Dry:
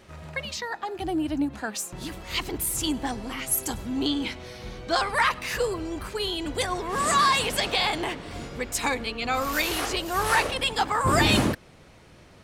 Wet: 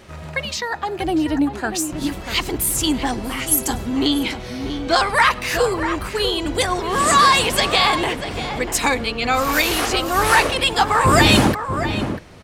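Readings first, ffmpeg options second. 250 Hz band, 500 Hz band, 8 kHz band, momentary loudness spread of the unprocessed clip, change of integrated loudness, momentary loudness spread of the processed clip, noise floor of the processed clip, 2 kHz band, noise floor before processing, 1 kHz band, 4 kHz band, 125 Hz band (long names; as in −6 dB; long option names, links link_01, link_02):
+8.0 dB, +8.0 dB, +7.5 dB, 12 LU, +7.5 dB, 12 LU, −34 dBFS, +8.0 dB, −51 dBFS, +8.0 dB, +7.5 dB, +8.0 dB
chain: -filter_complex "[0:a]asplit=2[link_01][link_02];[link_02]adelay=641.4,volume=-8dB,highshelf=frequency=4000:gain=-14.4[link_03];[link_01][link_03]amix=inputs=2:normalize=0,volume=7.5dB"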